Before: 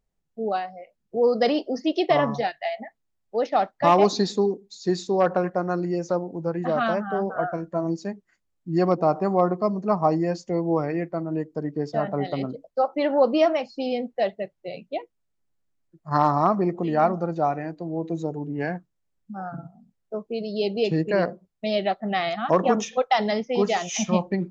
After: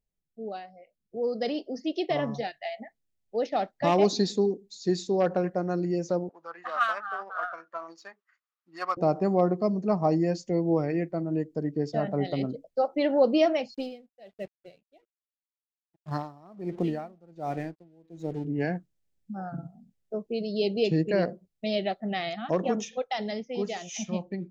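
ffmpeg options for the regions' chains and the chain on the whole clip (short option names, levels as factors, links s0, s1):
-filter_complex "[0:a]asettb=1/sr,asplit=3[s0][s1][s2];[s0]atrim=end=6.294[s3];[s1]atrim=start=6.29:end=8.97,asetpts=PTS-STARTPTS,afade=t=in:d=0.004:c=qsin,afade=t=out:st=2.676:d=0.004:c=qsin,tremolo=f=13:d=0.31,adynamicsmooth=sensitivity=7:basefreq=4100,highpass=f=1200:t=q:w=6.1[s4];[s2]atrim=start=8.966[s5];[s3][s4]acrossfade=d=0.004:c1=hsin:c2=qsin[s6];[s6][s5]acrossfade=d=0.004:c1=qsin:c2=hsin,asettb=1/sr,asplit=3[s7][s8][s9];[s7]atrim=end=13.744[s10];[s8]atrim=start=13.74:end=18.45,asetpts=PTS-STARTPTS,afade=t=in:d=0.004:c=qsin,afade=t=out:st=4.706:d=0.004:c=qsin,aeval=exprs='sgn(val(0))*max(abs(val(0))-0.00398,0)':c=same,aeval=exprs='val(0)*pow(10,-29*(0.5-0.5*cos(2*PI*1.3*n/s))/20)':c=same[s11];[s9]atrim=start=18.446[s12];[s10][s11]acrossfade=d=0.004:c1=hsin:c2=qsin[s13];[s13][s12]acrossfade=d=0.004:c1=qsin:c2=hsin,equalizer=f=1100:t=o:w=1.1:g=-9.5,dynaudnorm=f=270:g=17:m=2.82,volume=0.398"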